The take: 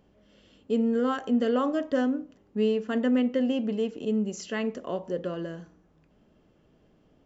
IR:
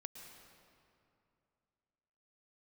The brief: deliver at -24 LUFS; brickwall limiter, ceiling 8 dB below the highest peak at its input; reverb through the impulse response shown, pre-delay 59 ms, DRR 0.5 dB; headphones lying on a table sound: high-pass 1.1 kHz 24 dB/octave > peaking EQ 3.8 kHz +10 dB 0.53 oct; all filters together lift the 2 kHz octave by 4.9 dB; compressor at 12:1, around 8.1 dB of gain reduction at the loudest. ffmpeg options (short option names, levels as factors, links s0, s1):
-filter_complex "[0:a]equalizer=f=2000:t=o:g=5.5,acompressor=threshold=0.0398:ratio=12,alimiter=level_in=1.5:limit=0.0631:level=0:latency=1,volume=0.668,asplit=2[s0][s1];[1:a]atrim=start_sample=2205,adelay=59[s2];[s1][s2]afir=irnorm=-1:irlink=0,volume=1.58[s3];[s0][s3]amix=inputs=2:normalize=0,highpass=f=1100:w=0.5412,highpass=f=1100:w=1.3066,equalizer=f=3800:t=o:w=0.53:g=10,volume=7.94"